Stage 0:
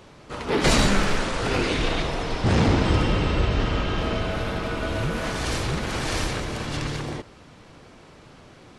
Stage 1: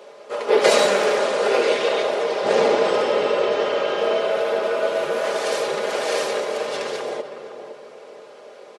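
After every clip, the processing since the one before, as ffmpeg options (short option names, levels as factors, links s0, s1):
-filter_complex "[0:a]highpass=f=510:t=q:w=5.1,aecho=1:1:4.9:0.53,asplit=2[s0][s1];[s1]adelay=511,lowpass=f=1100:p=1,volume=0.398,asplit=2[s2][s3];[s3]adelay=511,lowpass=f=1100:p=1,volume=0.39,asplit=2[s4][s5];[s5]adelay=511,lowpass=f=1100:p=1,volume=0.39,asplit=2[s6][s7];[s7]adelay=511,lowpass=f=1100:p=1,volume=0.39[s8];[s0][s2][s4][s6][s8]amix=inputs=5:normalize=0"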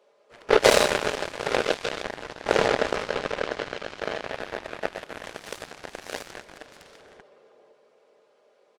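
-af "aeval=exprs='0.841*(cos(1*acos(clip(val(0)/0.841,-1,1)))-cos(1*PI/2))+0.133*(cos(7*acos(clip(val(0)/0.841,-1,1)))-cos(7*PI/2))':c=same"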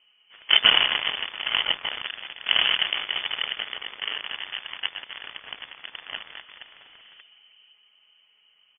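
-af "lowpass=f=3000:t=q:w=0.5098,lowpass=f=3000:t=q:w=0.6013,lowpass=f=3000:t=q:w=0.9,lowpass=f=3000:t=q:w=2.563,afreqshift=-3500"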